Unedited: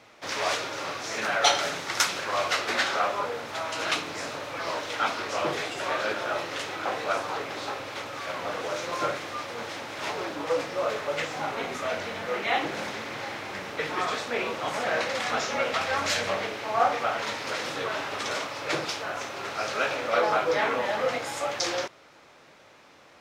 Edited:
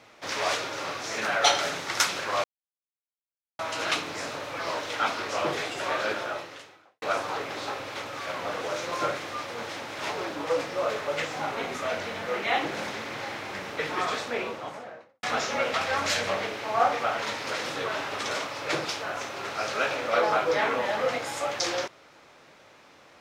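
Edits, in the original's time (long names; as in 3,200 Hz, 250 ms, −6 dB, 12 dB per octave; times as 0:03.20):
0:02.44–0:03.59: silence
0:06.16–0:07.02: fade out quadratic
0:14.15–0:15.23: fade out and dull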